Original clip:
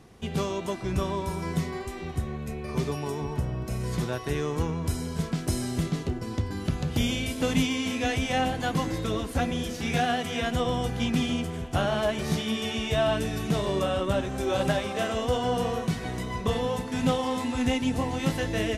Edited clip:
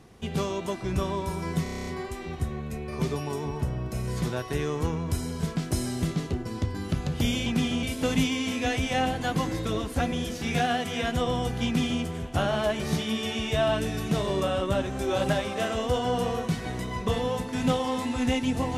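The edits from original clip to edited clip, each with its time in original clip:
0:01.63: stutter 0.03 s, 9 plays
0:11.04–0:11.41: duplicate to 0:07.22

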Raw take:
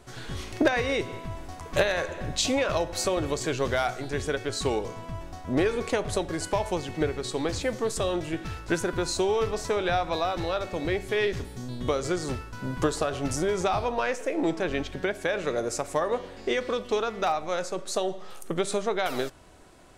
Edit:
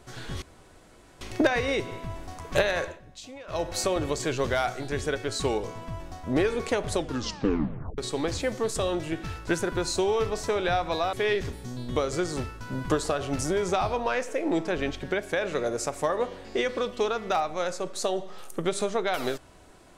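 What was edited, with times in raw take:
0:00.42: splice in room tone 0.79 s
0:02.05–0:02.84: duck −18 dB, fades 0.16 s
0:06.15: tape stop 1.04 s
0:10.34–0:11.05: remove

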